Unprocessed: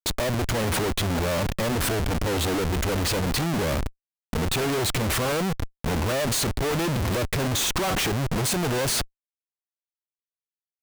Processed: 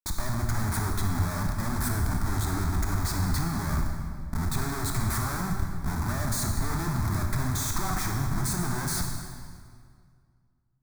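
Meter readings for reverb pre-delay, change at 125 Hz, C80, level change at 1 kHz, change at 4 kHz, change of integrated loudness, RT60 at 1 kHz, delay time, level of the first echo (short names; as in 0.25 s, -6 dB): 24 ms, -0.5 dB, 4.5 dB, -3.5 dB, -11.0 dB, -4.5 dB, 2.0 s, none, none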